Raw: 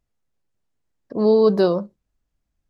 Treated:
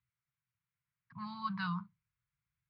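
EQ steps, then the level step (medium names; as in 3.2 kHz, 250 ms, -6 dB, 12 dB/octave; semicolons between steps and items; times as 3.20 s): Chebyshev band-stop 170–990 Hz, order 4; distance through air 170 m; cabinet simulation 110–4400 Hz, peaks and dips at 120 Hz +9 dB, 270 Hz +7 dB, 1.4 kHz +5 dB, 2.2 kHz +8 dB; -6.5 dB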